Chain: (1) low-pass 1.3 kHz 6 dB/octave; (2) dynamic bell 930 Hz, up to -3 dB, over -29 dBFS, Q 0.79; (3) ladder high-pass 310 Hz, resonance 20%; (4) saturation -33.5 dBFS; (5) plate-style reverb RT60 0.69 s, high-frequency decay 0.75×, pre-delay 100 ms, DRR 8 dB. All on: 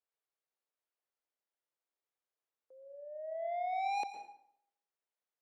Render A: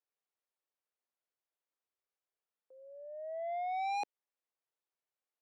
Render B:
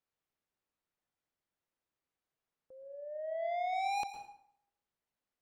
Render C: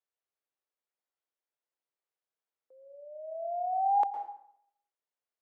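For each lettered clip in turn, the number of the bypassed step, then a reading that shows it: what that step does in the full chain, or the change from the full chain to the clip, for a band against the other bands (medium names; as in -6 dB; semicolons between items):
5, crest factor change -4.0 dB; 3, 1 kHz band -2.0 dB; 4, distortion -7 dB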